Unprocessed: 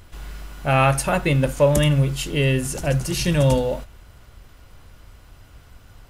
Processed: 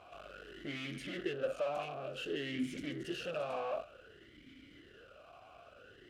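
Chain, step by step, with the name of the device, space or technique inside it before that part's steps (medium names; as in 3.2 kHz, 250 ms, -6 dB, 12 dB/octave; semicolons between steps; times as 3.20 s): talk box (valve stage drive 35 dB, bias 0.35; talking filter a-i 0.55 Hz); trim +10.5 dB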